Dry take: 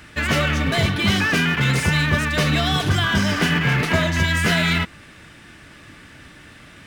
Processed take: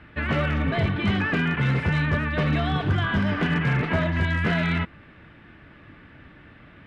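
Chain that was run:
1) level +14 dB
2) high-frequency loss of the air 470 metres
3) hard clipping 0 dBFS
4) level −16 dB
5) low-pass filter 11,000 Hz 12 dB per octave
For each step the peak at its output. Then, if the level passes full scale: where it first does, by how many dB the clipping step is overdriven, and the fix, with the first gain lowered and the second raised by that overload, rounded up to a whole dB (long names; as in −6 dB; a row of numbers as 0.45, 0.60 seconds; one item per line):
+9.0, +8.0, 0.0, −16.0, −16.0 dBFS
step 1, 8.0 dB
step 1 +6 dB, step 4 −8 dB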